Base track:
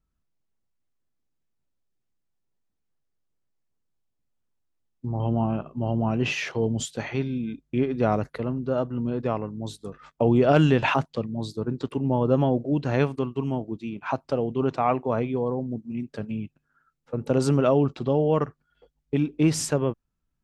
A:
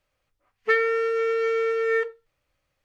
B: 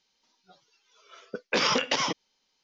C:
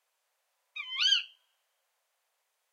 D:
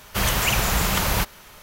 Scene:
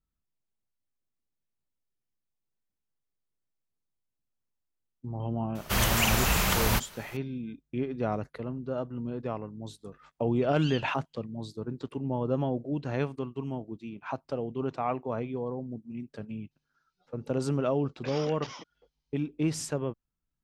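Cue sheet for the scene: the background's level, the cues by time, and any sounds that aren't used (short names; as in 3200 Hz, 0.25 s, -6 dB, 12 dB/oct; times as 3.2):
base track -7.5 dB
5.55 add D -4 dB
9.62 add C -16 dB
16.51 add B -17 dB
not used: A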